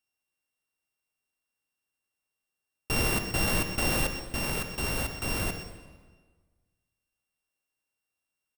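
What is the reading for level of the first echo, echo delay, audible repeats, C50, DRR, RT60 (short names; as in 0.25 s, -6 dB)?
-12.0 dB, 0.126 s, 1, 7.0 dB, 6.5 dB, 1.5 s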